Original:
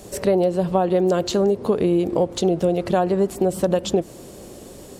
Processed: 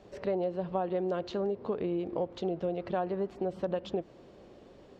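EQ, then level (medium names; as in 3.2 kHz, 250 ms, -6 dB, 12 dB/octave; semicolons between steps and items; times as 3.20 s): distance through air 230 m; bass shelf 430 Hz -6.5 dB; treble shelf 7.6 kHz -6.5 dB; -9.0 dB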